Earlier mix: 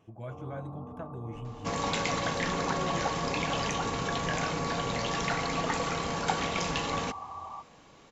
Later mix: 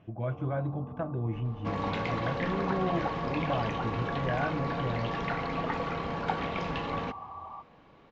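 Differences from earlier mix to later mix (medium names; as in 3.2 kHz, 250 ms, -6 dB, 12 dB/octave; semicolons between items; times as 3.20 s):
speech +8.5 dB; master: add distance through air 330 m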